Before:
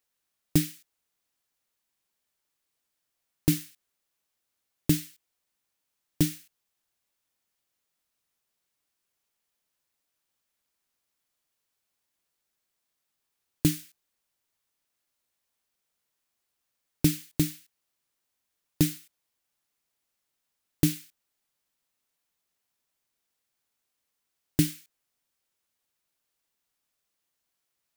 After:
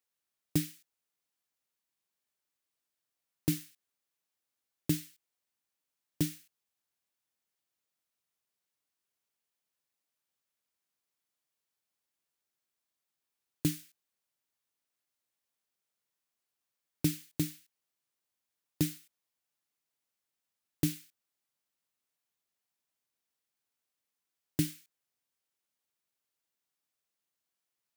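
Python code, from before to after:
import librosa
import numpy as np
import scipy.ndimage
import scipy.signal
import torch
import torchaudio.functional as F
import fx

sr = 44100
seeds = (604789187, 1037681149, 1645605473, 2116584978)

y = scipy.signal.sosfilt(scipy.signal.butter(2, 80.0, 'highpass', fs=sr, output='sos'), x)
y = F.gain(torch.from_numpy(y), -6.5).numpy()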